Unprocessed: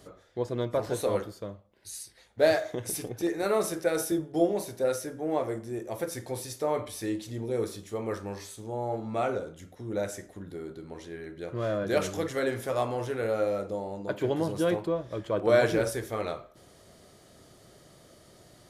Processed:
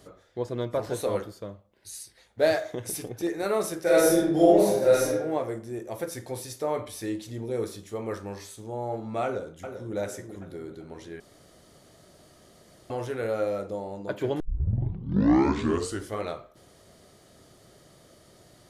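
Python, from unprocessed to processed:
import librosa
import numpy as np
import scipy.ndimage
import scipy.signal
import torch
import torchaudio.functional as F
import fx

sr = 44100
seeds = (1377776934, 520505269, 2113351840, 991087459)

y = fx.reverb_throw(x, sr, start_s=3.82, length_s=1.26, rt60_s=0.89, drr_db=-7.5)
y = fx.echo_throw(y, sr, start_s=9.24, length_s=0.72, ms=390, feedback_pct=50, wet_db=-8.0)
y = fx.edit(y, sr, fx.room_tone_fill(start_s=11.2, length_s=1.7),
    fx.tape_start(start_s=14.4, length_s=1.83), tone=tone)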